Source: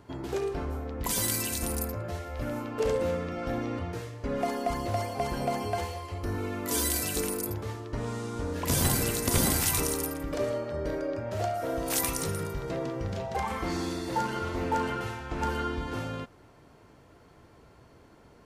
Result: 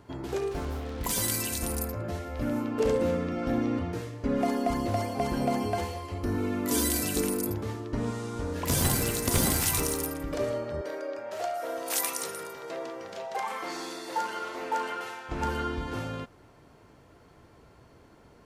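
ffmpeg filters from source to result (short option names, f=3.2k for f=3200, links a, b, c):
-filter_complex "[0:a]asettb=1/sr,asplit=3[a][b][c];[a]atrim=end=0.514[d];[b]atrim=start=0.51:end=1.16,asetpts=PTS-STARTPTS,afade=t=in:d=0.004:c=qsin,afade=t=out:st=0.646:d=0.004:c=qsin,acrusher=bits=6:mix=0:aa=0.5[e];[c]atrim=start=1.156[f];[d][e]acrossfade=d=0.004:c1=hsin:c2=qsin[g];[g][f]acrossfade=d=0.004:c1=qsin:c2=hsin,asettb=1/sr,asplit=3[h][i][j];[h]atrim=end=1.994[k];[i]atrim=start=1.99:end=8.11,asetpts=PTS-STARTPTS,afade=t=in:d=0.004:c=qsin,afade=t=out:st=6.116:d=0.004:c=qsin,equalizer=f=250:w=1.5:g=7.5[l];[j]atrim=start=8.106[m];[k][l]acrossfade=d=0.004:c1=hsin:c2=qsin[n];[n][m]acrossfade=d=0.004:c1=qsin:c2=hsin,asettb=1/sr,asplit=3[o][p][q];[o]atrim=end=8.664[r];[p]atrim=start=8.66:end=10.1,asetpts=PTS-STARTPTS,afade=t=in:d=0.004:c=qsin,afade=t=out:st=1.436:d=0.004:c=qsin,acrusher=bits=6:mode=log:mix=0:aa=0.000001[s];[q]atrim=start=10.096[t];[r][s]acrossfade=d=0.004:c1=hsin:c2=qsin[u];[u][t]acrossfade=d=0.004:c1=qsin:c2=hsin,asettb=1/sr,asplit=3[v][w][x];[v]atrim=end=10.814[y];[w]atrim=start=10.81:end=15.29,asetpts=PTS-STARTPTS,afade=t=in:d=0.004:c=qsin,afade=t=out:st=4.476:d=0.004:c=qsin,highpass=480[z];[x]atrim=start=15.286[aa];[y][z]acrossfade=d=0.004:c1=hsin:c2=qsin[ab];[ab][aa]acrossfade=d=0.004:c1=qsin:c2=hsin"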